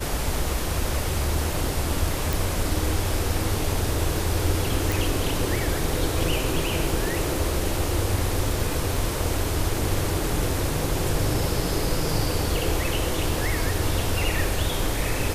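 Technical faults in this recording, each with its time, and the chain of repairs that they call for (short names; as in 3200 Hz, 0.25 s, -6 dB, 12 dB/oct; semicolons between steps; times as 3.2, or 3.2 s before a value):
2.33 pop
4.92 pop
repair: de-click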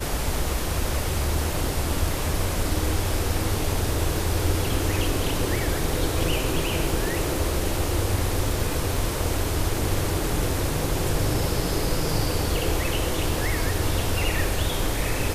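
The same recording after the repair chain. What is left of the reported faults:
none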